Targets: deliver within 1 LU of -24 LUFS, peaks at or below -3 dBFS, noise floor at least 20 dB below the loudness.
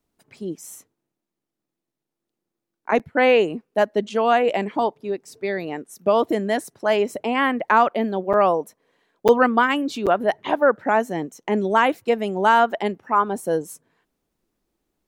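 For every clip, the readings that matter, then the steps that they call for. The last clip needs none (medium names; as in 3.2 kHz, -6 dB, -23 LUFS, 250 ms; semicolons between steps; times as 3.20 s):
dropouts 4; longest dropout 7.4 ms; loudness -21.0 LUFS; peak level -3.5 dBFS; loudness target -24.0 LUFS
-> interpolate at 2.99/8.33/9.28/10.06 s, 7.4 ms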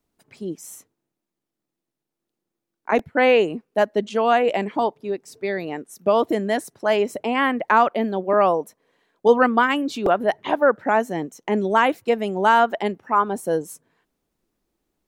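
dropouts 0; loudness -21.0 LUFS; peak level -3.5 dBFS; loudness target -24.0 LUFS
-> trim -3 dB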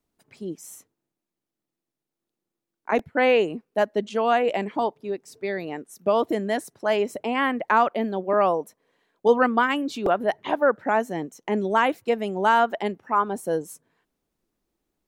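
loudness -24.0 LUFS; peak level -6.5 dBFS; noise floor -86 dBFS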